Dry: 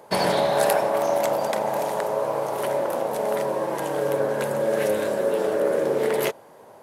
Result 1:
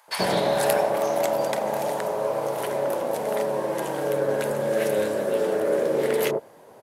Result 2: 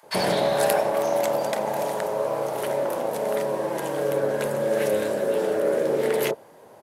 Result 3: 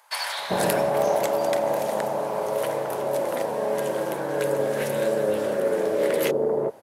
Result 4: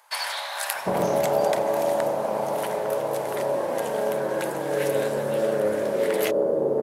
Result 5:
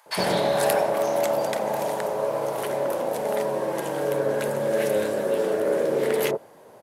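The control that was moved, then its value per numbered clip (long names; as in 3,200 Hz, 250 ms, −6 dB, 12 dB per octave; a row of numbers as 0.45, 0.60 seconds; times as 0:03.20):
multiband delay without the direct sound, delay time: 80, 30, 390, 750, 60 milliseconds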